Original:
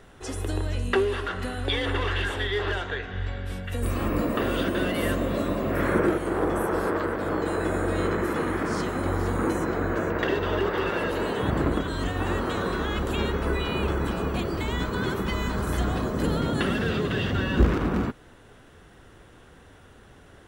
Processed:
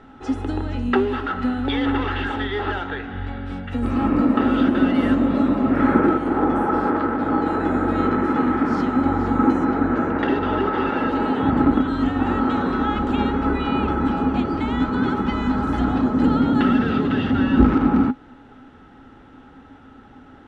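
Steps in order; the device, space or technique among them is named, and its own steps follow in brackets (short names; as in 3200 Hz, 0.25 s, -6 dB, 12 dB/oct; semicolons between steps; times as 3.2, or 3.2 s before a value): inside a cardboard box (LPF 3900 Hz 12 dB/oct; small resonant body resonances 260/830/1300 Hz, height 17 dB, ringing for 75 ms)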